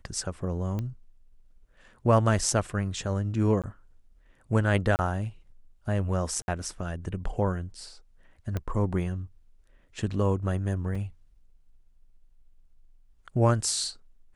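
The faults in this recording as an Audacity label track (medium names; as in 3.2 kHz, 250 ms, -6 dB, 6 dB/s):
0.790000	0.790000	pop -21 dBFS
3.620000	3.640000	dropout 17 ms
4.960000	4.990000	dropout 29 ms
6.420000	6.480000	dropout 61 ms
8.570000	8.570000	pop -18 dBFS
10.950000	10.950000	dropout 3.9 ms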